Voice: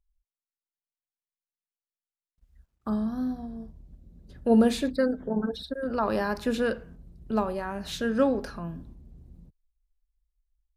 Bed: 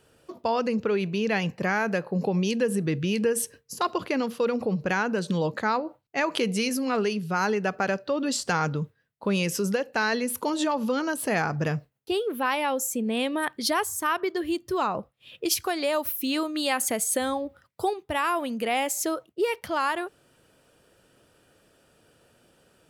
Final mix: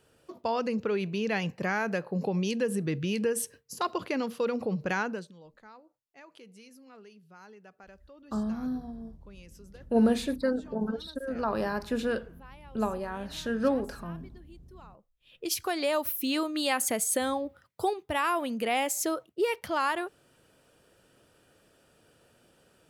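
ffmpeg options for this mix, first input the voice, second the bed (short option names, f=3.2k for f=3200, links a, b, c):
-filter_complex "[0:a]adelay=5450,volume=-3dB[a];[1:a]volume=20.5dB,afade=t=out:st=5.02:d=0.29:silence=0.0749894,afade=t=in:st=15.09:d=0.68:silence=0.0595662[b];[a][b]amix=inputs=2:normalize=0"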